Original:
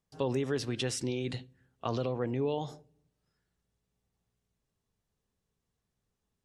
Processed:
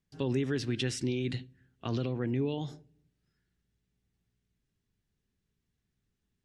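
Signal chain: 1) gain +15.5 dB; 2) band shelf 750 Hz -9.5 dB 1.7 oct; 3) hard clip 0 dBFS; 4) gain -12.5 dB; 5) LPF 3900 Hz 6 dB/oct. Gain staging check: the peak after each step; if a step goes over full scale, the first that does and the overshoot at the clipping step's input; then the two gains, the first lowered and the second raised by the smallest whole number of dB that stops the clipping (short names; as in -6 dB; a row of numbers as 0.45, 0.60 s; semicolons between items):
-2.0, -5.0, -5.0, -17.5, -19.0 dBFS; no overload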